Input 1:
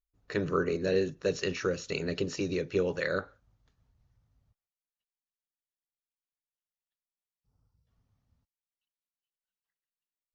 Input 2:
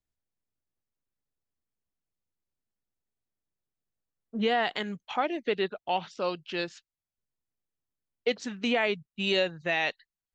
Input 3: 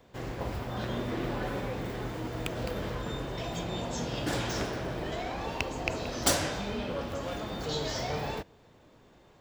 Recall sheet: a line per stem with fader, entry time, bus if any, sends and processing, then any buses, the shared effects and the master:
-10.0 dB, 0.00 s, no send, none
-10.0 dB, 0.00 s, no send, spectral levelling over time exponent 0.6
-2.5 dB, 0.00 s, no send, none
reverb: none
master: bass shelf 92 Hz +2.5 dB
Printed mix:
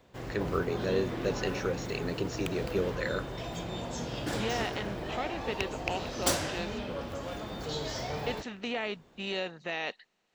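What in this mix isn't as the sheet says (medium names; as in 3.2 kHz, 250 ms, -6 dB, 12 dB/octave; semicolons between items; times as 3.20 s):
stem 1 -10.0 dB -> -2.5 dB; master: missing bass shelf 92 Hz +2.5 dB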